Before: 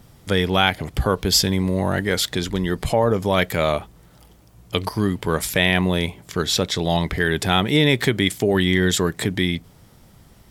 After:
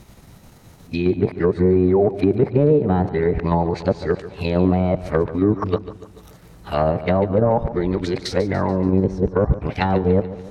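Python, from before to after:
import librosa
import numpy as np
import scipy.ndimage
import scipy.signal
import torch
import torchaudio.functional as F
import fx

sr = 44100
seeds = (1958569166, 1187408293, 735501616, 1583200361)

p1 = np.flip(x).copy()
p2 = fx.formant_shift(p1, sr, semitones=3)
p3 = fx.dynamic_eq(p2, sr, hz=2800.0, q=1.0, threshold_db=-35.0, ratio=4.0, max_db=-5)
p4 = fx.level_steps(p3, sr, step_db=10)
p5 = p3 + (p4 * librosa.db_to_amplitude(2.0))
p6 = np.clip(p5, -10.0 ** (-5.0 / 20.0), 10.0 ** (-5.0 / 20.0))
p7 = fx.env_lowpass_down(p6, sr, base_hz=700.0, full_db=-11.0)
p8 = p7 + fx.echo_feedback(p7, sr, ms=144, feedback_pct=52, wet_db=-14.5, dry=0)
y = p8 * librosa.db_to_amplitude(-2.0)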